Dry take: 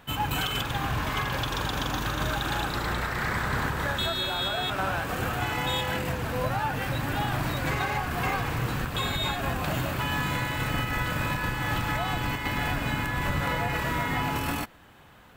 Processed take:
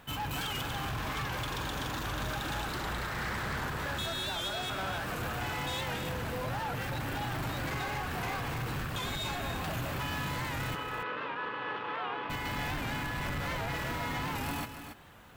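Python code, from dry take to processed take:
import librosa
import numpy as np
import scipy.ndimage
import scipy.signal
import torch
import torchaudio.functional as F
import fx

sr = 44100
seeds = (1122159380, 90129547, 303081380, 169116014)

y = fx.quant_companded(x, sr, bits=6)
y = 10.0 ** (-30.0 / 20.0) * np.tanh(y / 10.0 ** (-30.0 / 20.0))
y = fx.cabinet(y, sr, low_hz=360.0, low_slope=12, high_hz=3100.0, hz=(440.0, 660.0, 1100.0, 2100.0), db=(10, -5, 5, -5), at=(10.75, 12.3))
y = y + 10.0 ** (-9.0 / 20.0) * np.pad(y, (int(280 * sr / 1000.0), 0))[:len(y)]
y = fx.record_warp(y, sr, rpm=78.0, depth_cents=100.0)
y = y * 10.0 ** (-2.0 / 20.0)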